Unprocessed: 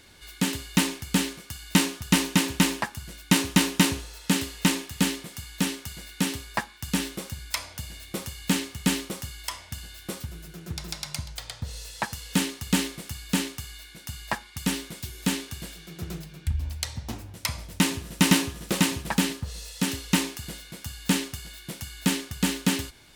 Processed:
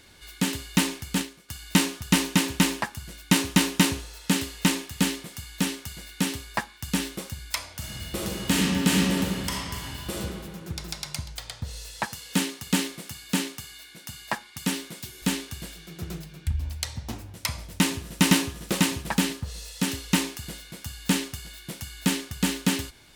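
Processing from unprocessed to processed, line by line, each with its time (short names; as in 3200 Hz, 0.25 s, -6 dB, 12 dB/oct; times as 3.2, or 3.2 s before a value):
1.08–1.49 transient shaper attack -4 dB, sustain -10 dB
7.75–10.19 reverb throw, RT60 2.2 s, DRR -4 dB
12.07–15.22 HPF 130 Hz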